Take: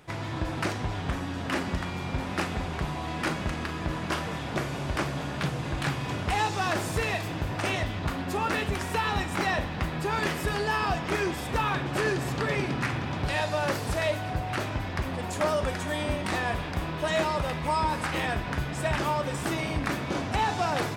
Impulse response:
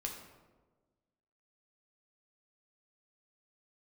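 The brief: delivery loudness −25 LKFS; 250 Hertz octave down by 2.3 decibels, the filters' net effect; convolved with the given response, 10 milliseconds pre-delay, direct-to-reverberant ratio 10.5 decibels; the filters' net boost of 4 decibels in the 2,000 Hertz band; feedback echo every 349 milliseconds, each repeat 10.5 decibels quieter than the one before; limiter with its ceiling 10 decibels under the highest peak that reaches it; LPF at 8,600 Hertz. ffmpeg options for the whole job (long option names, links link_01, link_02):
-filter_complex "[0:a]lowpass=8600,equalizer=frequency=250:width_type=o:gain=-3.5,equalizer=frequency=2000:width_type=o:gain=5,alimiter=limit=-23dB:level=0:latency=1,aecho=1:1:349|698|1047:0.299|0.0896|0.0269,asplit=2[link_01][link_02];[1:a]atrim=start_sample=2205,adelay=10[link_03];[link_02][link_03]afir=irnorm=-1:irlink=0,volume=-10dB[link_04];[link_01][link_04]amix=inputs=2:normalize=0,volume=6dB"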